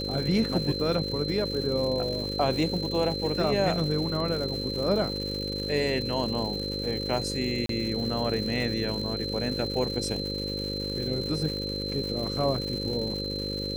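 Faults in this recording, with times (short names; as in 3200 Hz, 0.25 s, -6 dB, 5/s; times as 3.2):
buzz 50 Hz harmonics 11 -34 dBFS
crackle 270/s -34 dBFS
tone 4100 Hz -33 dBFS
7.66–7.69 gap 33 ms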